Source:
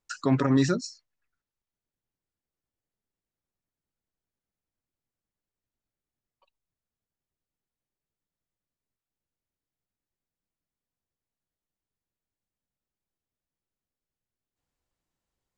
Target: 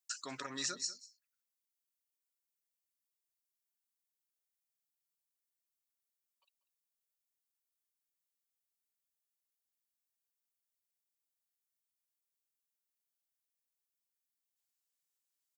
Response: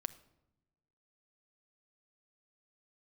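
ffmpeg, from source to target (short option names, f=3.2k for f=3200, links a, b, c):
-filter_complex "[0:a]aderivative,asplit=2[a][b];[b]adelay=192.4,volume=-16dB,highshelf=f=4k:g=-4.33[c];[a][c]amix=inputs=2:normalize=0,volume=2.5dB"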